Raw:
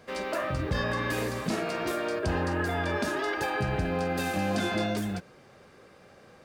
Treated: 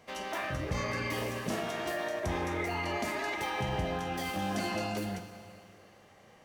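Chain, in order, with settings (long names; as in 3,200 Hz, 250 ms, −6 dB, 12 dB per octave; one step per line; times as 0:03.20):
four-comb reverb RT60 2.4 s, combs from 33 ms, DRR 8 dB
formants moved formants +4 semitones
level −5 dB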